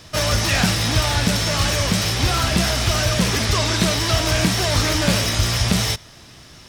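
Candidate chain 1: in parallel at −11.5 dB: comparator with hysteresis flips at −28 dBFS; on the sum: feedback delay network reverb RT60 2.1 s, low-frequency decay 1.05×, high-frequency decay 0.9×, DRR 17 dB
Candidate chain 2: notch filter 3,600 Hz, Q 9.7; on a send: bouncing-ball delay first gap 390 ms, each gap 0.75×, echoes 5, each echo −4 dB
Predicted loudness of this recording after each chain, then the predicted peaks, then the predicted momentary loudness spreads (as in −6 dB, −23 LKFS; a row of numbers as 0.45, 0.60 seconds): −17.0, −17.0 LKFS; −4.0, −3.0 dBFS; 1, 2 LU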